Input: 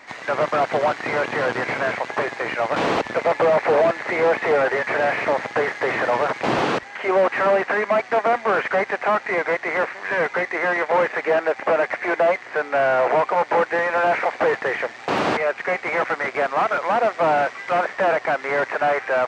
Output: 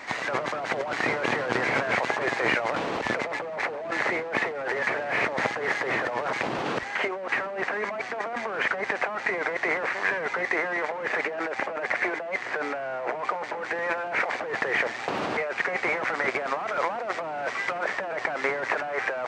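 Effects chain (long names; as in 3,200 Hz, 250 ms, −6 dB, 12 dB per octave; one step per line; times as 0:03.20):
compressor whose output falls as the input rises −27 dBFS, ratio −1
level −1.5 dB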